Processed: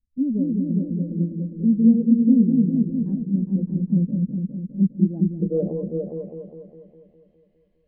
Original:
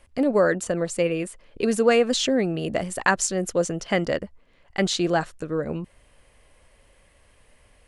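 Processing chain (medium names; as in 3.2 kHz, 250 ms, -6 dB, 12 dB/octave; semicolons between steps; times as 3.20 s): low-pass sweep 220 Hz -> 4.2 kHz, 5.10–6.52 s; on a send: delay with an opening low-pass 204 ms, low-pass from 400 Hz, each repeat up 2 oct, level 0 dB; on the sum: spectral contrast expander 1.5:1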